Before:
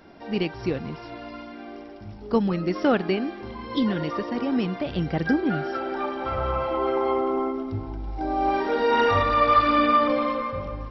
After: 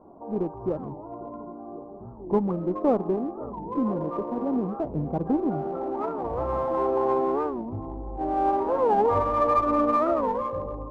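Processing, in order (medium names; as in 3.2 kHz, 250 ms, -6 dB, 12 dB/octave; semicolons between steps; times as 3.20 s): elliptic low-pass 1.1 kHz, stop band 40 dB; bass shelf 320 Hz -6.5 dB; in parallel at -8 dB: one-sided clip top -33.5 dBFS; on the sum: bucket-brigade echo 533 ms, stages 2048, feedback 81%, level -18 dB; warped record 45 rpm, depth 250 cents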